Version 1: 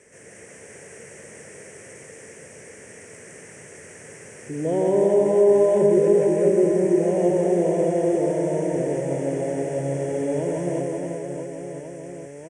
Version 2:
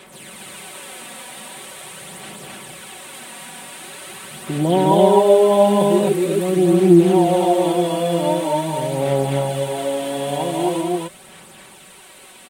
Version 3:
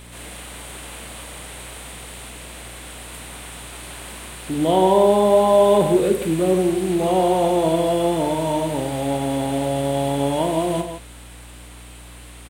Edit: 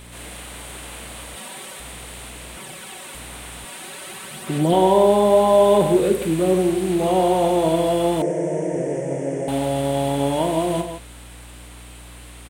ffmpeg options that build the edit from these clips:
-filter_complex "[1:a]asplit=3[s0][s1][s2];[2:a]asplit=5[s3][s4][s5][s6][s7];[s3]atrim=end=1.362[s8];[s0]atrim=start=1.358:end=1.802[s9];[s4]atrim=start=1.798:end=2.572[s10];[s1]atrim=start=2.568:end=3.152[s11];[s5]atrim=start=3.148:end=3.652[s12];[s2]atrim=start=3.648:end=4.732[s13];[s6]atrim=start=4.728:end=8.222[s14];[0:a]atrim=start=8.218:end=9.482[s15];[s7]atrim=start=9.478[s16];[s8][s9]acrossfade=d=0.004:c1=hsin:c2=hsin[s17];[s17][s10]acrossfade=d=0.004:c1=hsin:c2=hsin[s18];[s18][s11]acrossfade=d=0.004:c1=hsin:c2=hsin[s19];[s19][s12]acrossfade=d=0.004:c1=hsin:c2=hsin[s20];[s20][s13]acrossfade=d=0.004:c1=hsin:c2=hsin[s21];[s21][s14]acrossfade=d=0.004:c1=hsin:c2=hsin[s22];[s22][s15]acrossfade=d=0.004:c1=hsin:c2=hsin[s23];[s23][s16]acrossfade=d=0.004:c1=hsin:c2=hsin"

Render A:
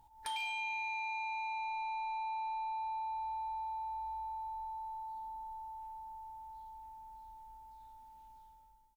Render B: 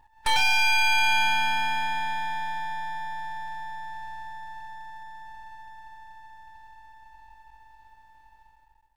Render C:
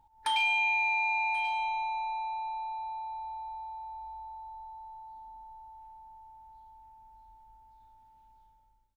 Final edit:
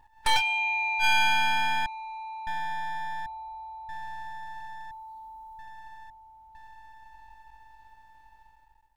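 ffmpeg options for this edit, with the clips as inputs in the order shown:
-filter_complex "[2:a]asplit=3[s0][s1][s2];[0:a]asplit=2[s3][s4];[1:a]asplit=6[s5][s6][s7][s8][s9][s10];[s5]atrim=end=0.42[s11];[s0]atrim=start=0.36:end=1.05[s12];[s6]atrim=start=0.99:end=1.862[s13];[s3]atrim=start=1.858:end=2.472[s14];[s7]atrim=start=2.468:end=3.262[s15];[s1]atrim=start=3.258:end=3.892[s16];[s8]atrim=start=3.888:end=4.912[s17];[s4]atrim=start=4.908:end=5.592[s18];[s9]atrim=start=5.588:end=6.102[s19];[s2]atrim=start=6.098:end=6.552[s20];[s10]atrim=start=6.548[s21];[s11][s12]acrossfade=d=0.06:c1=tri:c2=tri[s22];[s22][s13]acrossfade=d=0.06:c1=tri:c2=tri[s23];[s23][s14]acrossfade=d=0.004:c1=hsin:c2=hsin[s24];[s24][s15]acrossfade=d=0.004:c1=hsin:c2=hsin[s25];[s25][s16]acrossfade=d=0.004:c1=hsin:c2=hsin[s26];[s26][s17]acrossfade=d=0.004:c1=hsin:c2=hsin[s27];[s27][s18]acrossfade=d=0.004:c1=hsin:c2=hsin[s28];[s28][s19]acrossfade=d=0.004:c1=hsin:c2=hsin[s29];[s29][s20]acrossfade=d=0.004:c1=hsin:c2=hsin[s30];[s30][s21]acrossfade=d=0.004:c1=hsin:c2=hsin"

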